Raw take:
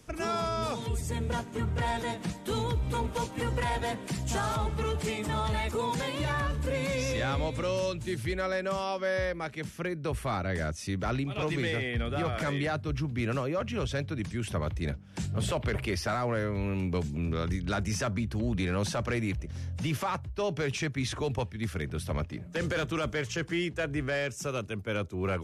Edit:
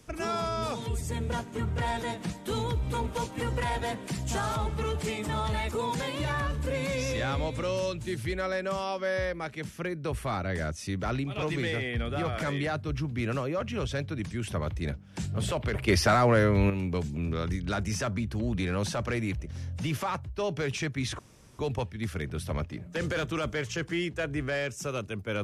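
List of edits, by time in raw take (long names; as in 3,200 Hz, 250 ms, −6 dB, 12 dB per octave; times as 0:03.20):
0:15.88–0:16.70: clip gain +8 dB
0:21.19: splice in room tone 0.40 s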